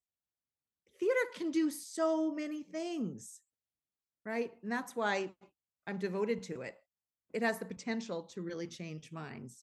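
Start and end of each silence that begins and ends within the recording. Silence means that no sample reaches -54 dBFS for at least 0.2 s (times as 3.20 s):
3.37–4.26 s
5.45–5.87 s
6.77–7.34 s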